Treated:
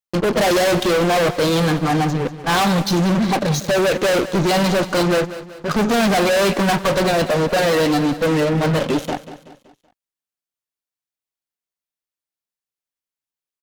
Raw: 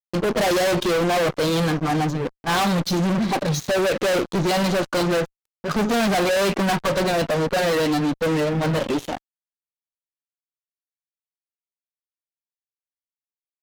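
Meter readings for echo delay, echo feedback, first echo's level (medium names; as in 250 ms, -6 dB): 189 ms, 46%, -14.5 dB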